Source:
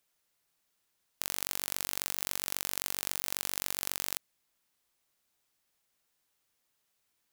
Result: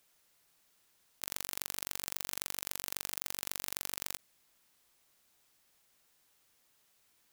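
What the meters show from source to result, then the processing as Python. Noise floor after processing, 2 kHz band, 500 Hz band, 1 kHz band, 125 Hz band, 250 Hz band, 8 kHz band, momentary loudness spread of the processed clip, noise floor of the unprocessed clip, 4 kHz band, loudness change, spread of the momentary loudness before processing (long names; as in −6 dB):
−72 dBFS, −4.0 dB, −4.0 dB, −4.0 dB, −4.0 dB, −4.0 dB, −4.0 dB, 4 LU, −79 dBFS, −4.0 dB, −4.0 dB, 3 LU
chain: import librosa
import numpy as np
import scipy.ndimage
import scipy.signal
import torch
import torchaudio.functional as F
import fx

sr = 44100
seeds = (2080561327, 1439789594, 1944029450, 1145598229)

y = fx.over_compress(x, sr, threshold_db=-43.0, ratio=-0.5)
y = y * 10.0 ** (1.5 / 20.0)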